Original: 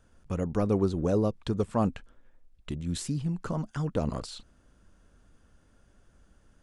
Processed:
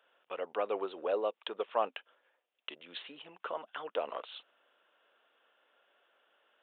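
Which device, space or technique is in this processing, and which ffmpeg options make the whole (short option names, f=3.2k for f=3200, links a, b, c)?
musical greeting card: -af "aresample=8000,aresample=44100,highpass=f=500:w=0.5412,highpass=f=500:w=1.3066,equalizer=f=2.9k:t=o:w=0.52:g=7.5"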